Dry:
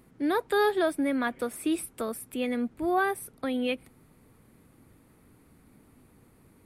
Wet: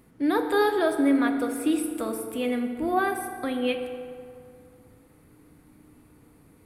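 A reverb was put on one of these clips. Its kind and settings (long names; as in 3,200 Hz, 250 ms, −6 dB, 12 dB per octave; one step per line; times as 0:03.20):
feedback delay network reverb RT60 2.3 s, low-frequency decay 0.9×, high-frequency decay 0.55×, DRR 5 dB
level +1 dB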